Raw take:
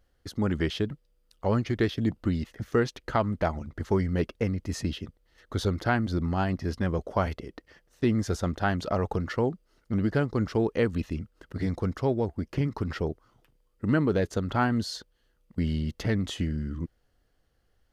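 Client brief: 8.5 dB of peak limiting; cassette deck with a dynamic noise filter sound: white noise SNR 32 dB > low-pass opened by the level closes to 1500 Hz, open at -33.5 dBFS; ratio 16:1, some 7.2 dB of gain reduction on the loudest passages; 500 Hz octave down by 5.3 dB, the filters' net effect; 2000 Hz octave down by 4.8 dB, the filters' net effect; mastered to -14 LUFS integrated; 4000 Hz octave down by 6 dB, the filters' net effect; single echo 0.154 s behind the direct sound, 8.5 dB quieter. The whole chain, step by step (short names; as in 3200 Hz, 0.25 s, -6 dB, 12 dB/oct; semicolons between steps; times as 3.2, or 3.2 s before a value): bell 500 Hz -6.5 dB; bell 2000 Hz -5 dB; bell 4000 Hz -6 dB; compressor 16:1, threshold -29 dBFS; limiter -28.5 dBFS; echo 0.154 s -8.5 dB; white noise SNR 32 dB; low-pass opened by the level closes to 1500 Hz, open at -33.5 dBFS; gain +25 dB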